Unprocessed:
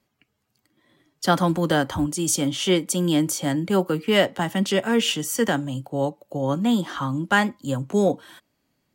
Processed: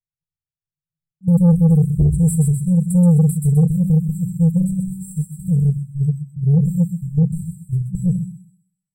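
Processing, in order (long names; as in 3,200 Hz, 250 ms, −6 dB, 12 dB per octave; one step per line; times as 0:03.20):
rectangular room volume 250 cubic metres, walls furnished, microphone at 0.86 metres
noise gate −23 dBFS, range −40 dB
high-shelf EQ 5,200 Hz +8 dB
mains-hum notches 60/120 Hz
feedback echo with a high-pass in the loop 128 ms, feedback 43%, high-pass 280 Hz, level −5 dB
in parallel at +2.5 dB: brickwall limiter −12 dBFS, peak gain reduction 9.5 dB
on the sum: RIAA equalisation playback
brick-wall band-stop 190–7,500 Hz
soft clipping −8 dBFS, distortion −14 dB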